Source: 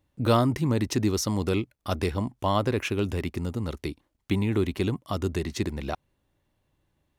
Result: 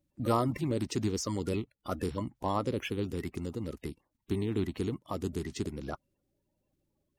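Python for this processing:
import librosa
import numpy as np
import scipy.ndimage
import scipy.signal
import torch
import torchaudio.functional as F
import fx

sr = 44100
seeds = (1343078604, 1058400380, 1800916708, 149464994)

y = fx.spec_quant(x, sr, step_db=30)
y = y * 10.0 ** (-6.0 / 20.0)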